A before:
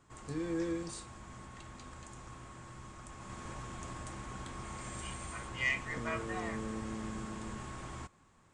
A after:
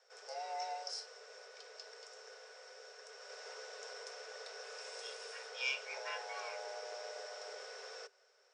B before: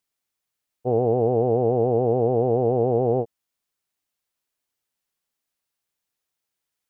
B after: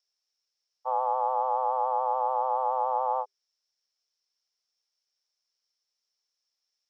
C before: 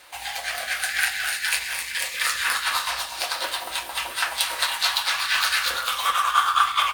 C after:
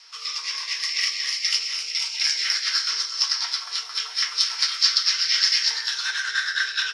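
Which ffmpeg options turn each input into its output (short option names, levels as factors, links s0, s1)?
-af "afreqshift=390,lowpass=f=5400:t=q:w=14,volume=0.447"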